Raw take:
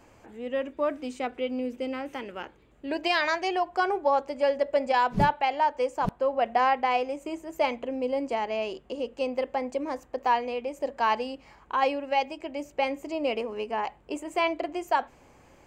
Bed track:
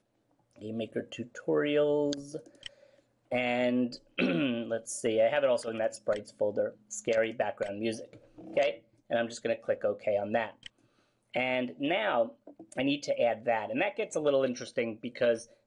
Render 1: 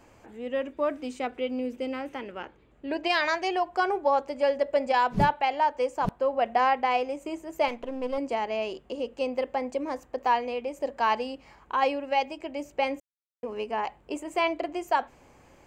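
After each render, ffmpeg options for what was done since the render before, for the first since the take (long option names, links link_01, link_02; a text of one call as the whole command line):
ffmpeg -i in.wav -filter_complex "[0:a]asettb=1/sr,asplit=3[link_01][link_02][link_03];[link_01]atrim=end=2.094[link_04];[link_02]atrim=start=2.09:end=3.1,asetpts=PTS-STARTPTS,afade=type=in:duration=0.004:curve=qsin,afade=type=out:start_time=1.006:duration=0.004:curve=qsin,highshelf=frequency=5900:gain=-10[link_05];[link_03]atrim=start=3.096[link_06];[link_04][link_05]acrossfade=duration=0.004:curve1=hsin:curve2=qsin[link_07];[link_07][link_06]acrossfade=duration=0.004:curve1=qsin:curve2=hsin,asettb=1/sr,asplit=3[link_08][link_09][link_10];[link_08]atrim=end=7.684[link_11];[link_09]atrim=start=7.68:end=8.18,asetpts=PTS-STARTPTS,afade=type=in:duration=0.004:curve=qsin,afade=type=out:start_time=0.496:duration=0.004:curve=qsin,aeval=exprs='if(lt(val(0),0),0.447*val(0),val(0))':channel_layout=same[link_12];[link_10]atrim=start=8.176[link_13];[link_11][link_12]acrossfade=duration=0.004:curve1=hsin:curve2=qsin[link_14];[link_14][link_13]acrossfade=duration=0.004:curve1=qsin:curve2=hsin,asplit=3[link_15][link_16][link_17];[link_15]atrim=end=13,asetpts=PTS-STARTPTS,afade=type=out:start_time=12.996:duration=0.004:curve=hsin[link_18];[link_16]atrim=start=13:end=13.43,asetpts=PTS-STARTPTS,volume=0[link_19];[link_17]atrim=start=13.43,asetpts=PTS-STARTPTS,afade=type=in:duration=0.004:curve=hsin[link_20];[link_18][link_19][link_20]concat=n=3:v=0:a=1" out.wav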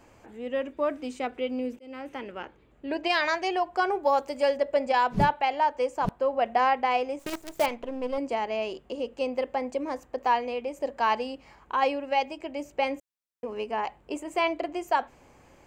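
ffmpeg -i in.wav -filter_complex "[0:a]asettb=1/sr,asplit=3[link_01][link_02][link_03];[link_01]atrim=end=4.034[link_04];[link_02]atrim=start=4.03:end=4.57,asetpts=PTS-STARTPTS,afade=type=in:duration=0.004:curve=qsin,afade=type=out:start_time=0.536:duration=0.004:curve=qsin,aemphasis=mode=production:type=50kf[link_05];[link_03]atrim=start=4.566[link_06];[link_04][link_05]acrossfade=duration=0.004:curve1=hsin:curve2=qsin[link_07];[link_07][link_06]acrossfade=duration=0.004:curve1=qsin:curve2=hsin,asettb=1/sr,asplit=3[link_08][link_09][link_10];[link_08]atrim=end=7.194[link_11];[link_09]atrim=start=7.19:end=7.66,asetpts=PTS-STARTPTS,afade=type=in:duration=0.004:curve=qsin,afade=type=out:start_time=0.466:duration=0.004:curve=qsin,acrusher=bits=6:dc=4:mix=0:aa=0.000001[link_12];[link_10]atrim=start=7.656[link_13];[link_11][link_12]acrossfade=duration=0.004:curve1=hsin:curve2=qsin[link_14];[link_14][link_13]acrossfade=duration=0.004:curve1=qsin:curve2=hsin,asplit=2[link_15][link_16];[link_15]atrim=end=1.79,asetpts=PTS-STARTPTS,afade=type=out:start_time=1.786:duration=0.004:curve=hsin[link_17];[link_16]atrim=start=1.79,asetpts=PTS-STARTPTS,afade=type=in:duration=0.51:curve=qsin[link_18];[link_17][link_18]concat=n=2:v=0:a=1" out.wav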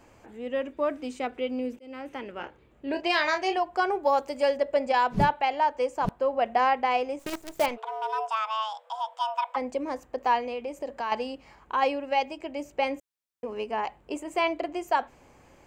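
ffmpeg -i in.wav -filter_complex "[0:a]asettb=1/sr,asplit=3[link_01][link_02][link_03];[link_01]atrim=end=2.354[link_04];[link_02]atrim=start=2.35:end=3.58,asetpts=PTS-STARTPTS,afade=type=in:duration=0.004:curve=qsin,afade=type=out:start_time=1.226:duration=0.004:curve=qsin,asplit=2[link_05][link_06];[link_06]adelay=29,volume=-7dB[link_07];[link_05][link_07]amix=inputs=2:normalize=0,atrim=end_sample=54243[link_08];[link_03]atrim=start=3.576[link_09];[link_04][link_08]acrossfade=duration=0.004:curve1=hsin:curve2=qsin[link_10];[link_10][link_09]acrossfade=duration=0.004:curve1=qsin:curve2=hsin,asplit=3[link_11][link_12][link_13];[link_11]afade=type=out:start_time=7.76:duration=0.02[link_14];[link_12]afreqshift=440,afade=type=in:start_time=7.76:duration=0.02,afade=type=out:start_time=9.55:duration=0.02[link_15];[link_13]afade=type=in:start_time=9.55:duration=0.02[link_16];[link_14][link_15][link_16]amix=inputs=3:normalize=0,asettb=1/sr,asplit=3[link_17][link_18][link_19];[link_17]atrim=end=10.404[link_20];[link_18]atrim=start=10.4:end=11.12,asetpts=PTS-STARTPTS,afade=type=in:duration=0.004:curve=qsin,afade=type=out:start_time=0.716:duration=0.004:curve=qsin,acompressor=threshold=-29dB:ratio=3:attack=3.2:release=140:knee=1:detection=peak[link_21];[link_19]atrim=start=11.116[link_22];[link_20][link_21]acrossfade=duration=0.004:curve1=hsin:curve2=qsin[link_23];[link_23][link_22]acrossfade=duration=0.004:curve1=qsin:curve2=hsin" out.wav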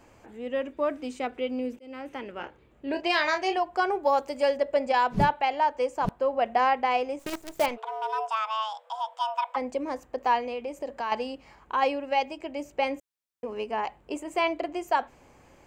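ffmpeg -i in.wav -af anull out.wav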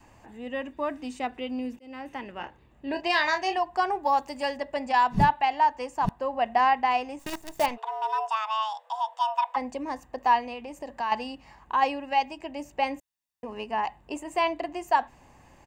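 ffmpeg -i in.wav -af "adynamicequalizer=threshold=0.00891:dfrequency=550:dqfactor=3.1:tfrequency=550:tqfactor=3.1:attack=5:release=100:ratio=0.375:range=3:mode=cutabove:tftype=bell,aecho=1:1:1.1:0.45" out.wav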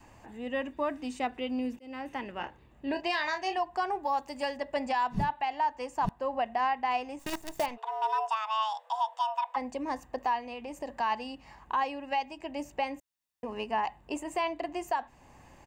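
ffmpeg -i in.wav -af "alimiter=limit=-20.5dB:level=0:latency=1:release=410" out.wav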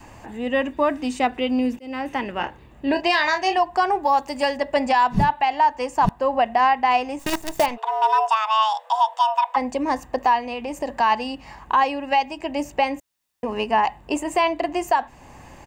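ffmpeg -i in.wav -af "volume=11dB" out.wav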